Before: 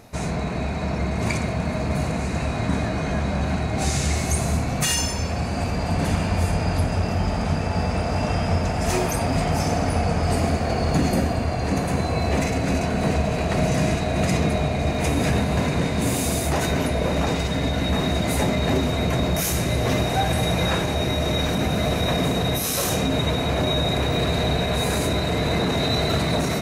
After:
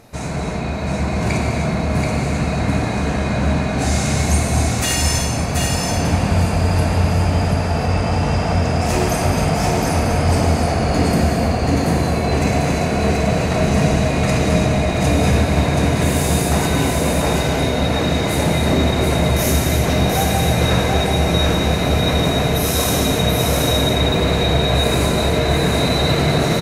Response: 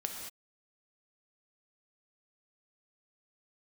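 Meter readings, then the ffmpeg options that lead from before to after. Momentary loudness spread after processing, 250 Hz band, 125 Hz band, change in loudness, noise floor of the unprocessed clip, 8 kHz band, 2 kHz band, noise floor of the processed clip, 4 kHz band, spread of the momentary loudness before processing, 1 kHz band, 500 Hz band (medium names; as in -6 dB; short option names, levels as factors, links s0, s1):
3 LU, +5.0 dB, +5.5 dB, +5.5 dB, -26 dBFS, +5.0 dB, +5.0 dB, -21 dBFS, +5.0 dB, 3 LU, +5.0 dB, +5.5 dB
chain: -filter_complex "[0:a]aecho=1:1:730:0.668[s0];[1:a]atrim=start_sample=2205,asetrate=30870,aresample=44100[s1];[s0][s1]afir=irnorm=-1:irlink=0"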